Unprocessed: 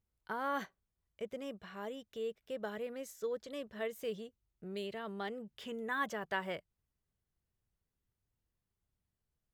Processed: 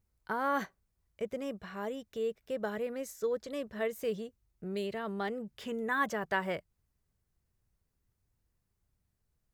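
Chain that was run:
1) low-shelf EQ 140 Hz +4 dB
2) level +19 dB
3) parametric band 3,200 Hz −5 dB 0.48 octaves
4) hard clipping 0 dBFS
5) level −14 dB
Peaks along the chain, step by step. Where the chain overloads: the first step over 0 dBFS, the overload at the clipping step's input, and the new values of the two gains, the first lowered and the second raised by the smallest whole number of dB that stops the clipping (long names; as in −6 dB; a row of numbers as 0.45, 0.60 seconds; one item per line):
−22.5, −3.5, −3.5, −3.5, −17.5 dBFS
no step passes full scale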